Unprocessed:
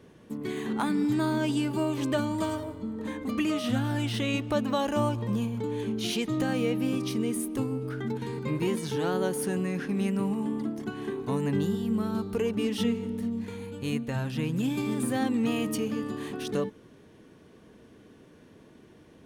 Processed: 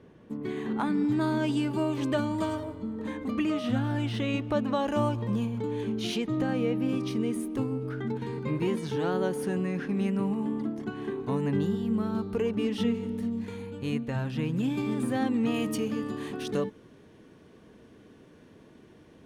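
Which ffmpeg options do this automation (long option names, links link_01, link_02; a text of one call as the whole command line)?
ffmpeg -i in.wav -af "asetnsamples=nb_out_samples=441:pad=0,asendcmd='1.21 lowpass f 4400;3.28 lowpass f 2400;4.87 lowpass f 4400;6.18 lowpass f 1800;6.89 lowpass f 3100;12.94 lowpass f 7200;13.62 lowpass f 3300;15.54 lowpass f 8100',lowpass=frequency=2100:poles=1" out.wav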